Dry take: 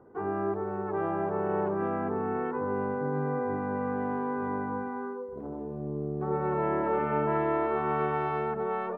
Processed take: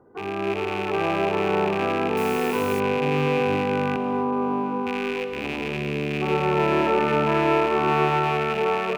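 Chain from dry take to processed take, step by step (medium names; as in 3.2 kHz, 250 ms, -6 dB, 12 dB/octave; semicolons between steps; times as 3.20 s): rattle on loud lows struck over -47 dBFS, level -26 dBFS; 3.96–4.87 s: elliptic band-pass 170–1200 Hz; on a send: echo whose repeats swap between lows and highs 652 ms, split 930 Hz, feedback 53%, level -13.5 dB; on the sum: gated-style reverb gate 290 ms rising, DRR 9.5 dB; 2.17–2.80 s: word length cut 8-bit, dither triangular; level rider gain up to 6.5 dB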